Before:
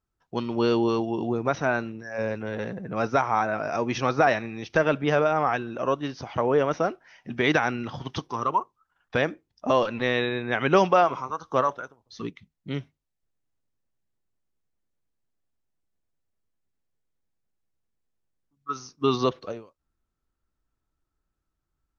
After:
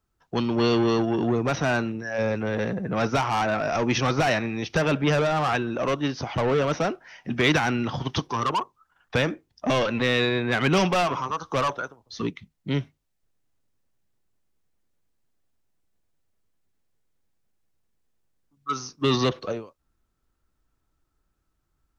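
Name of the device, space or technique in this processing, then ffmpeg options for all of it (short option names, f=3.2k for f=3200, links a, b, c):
one-band saturation: -filter_complex "[0:a]acrossover=split=210|2400[a][b][c];[b]asoftclip=type=tanh:threshold=-28dB[d];[a][d][c]amix=inputs=3:normalize=0,volume=6.5dB"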